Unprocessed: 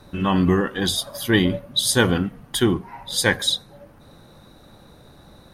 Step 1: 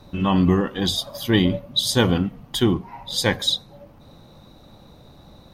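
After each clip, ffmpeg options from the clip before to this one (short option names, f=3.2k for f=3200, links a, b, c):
-af "equalizer=f=400:t=o:w=0.67:g=-3,equalizer=f=1.6k:t=o:w=0.67:g=-8,equalizer=f=10k:t=o:w=0.67:g=-11,volume=1.5dB"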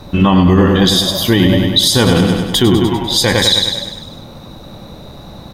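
-filter_complex "[0:a]asplit=2[a][b];[b]aecho=0:1:99|198|297|396|495|594|693:0.473|0.27|0.154|0.0876|0.0499|0.0285|0.0162[c];[a][c]amix=inputs=2:normalize=0,alimiter=level_in=14dB:limit=-1dB:release=50:level=0:latency=1,volume=-1dB"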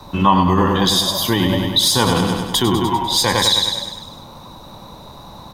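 -filter_complex "[0:a]equalizer=f=980:w=2.6:g=14,acrossover=split=110|970|3800[a][b][c][d];[d]acontrast=75[e];[a][b][c][e]amix=inputs=4:normalize=0,volume=-7dB"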